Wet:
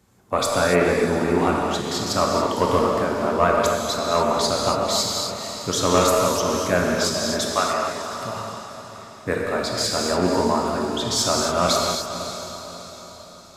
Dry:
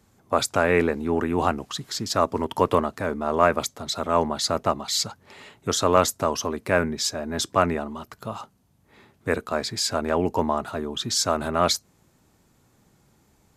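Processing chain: single-diode clipper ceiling -7 dBFS; 7.51–8.12 s: high-pass 610 Hz 12 dB/octave; on a send: echo that smears into a reverb 499 ms, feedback 49%, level -10 dB; on the sum: gated-style reverb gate 310 ms flat, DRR -1.5 dB

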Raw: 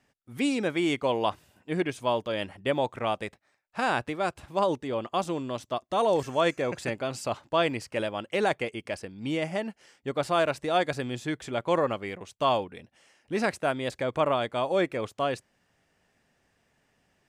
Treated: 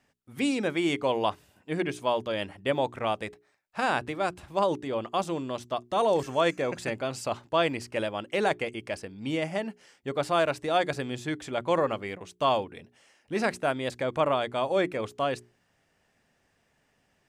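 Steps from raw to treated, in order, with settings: hum notches 60/120/180/240/300/360/420 Hz

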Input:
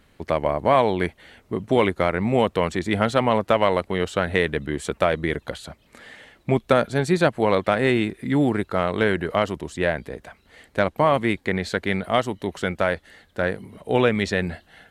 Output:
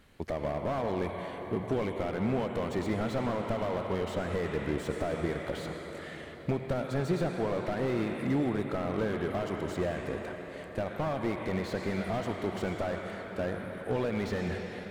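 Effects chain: compression, threshold -22 dBFS, peak gain reduction 9.5 dB; on a send at -7 dB: reverberation RT60 5.6 s, pre-delay 76 ms; on the sum: slew-rate limiter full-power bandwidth 37 Hz; trim -3 dB

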